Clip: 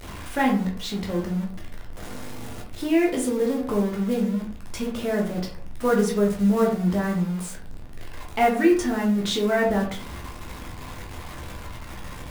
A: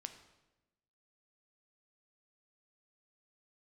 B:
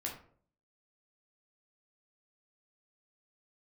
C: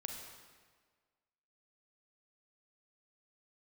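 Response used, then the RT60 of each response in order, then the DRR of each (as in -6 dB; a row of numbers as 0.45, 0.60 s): B; 1.0, 0.55, 1.6 s; 7.5, -1.5, 2.0 dB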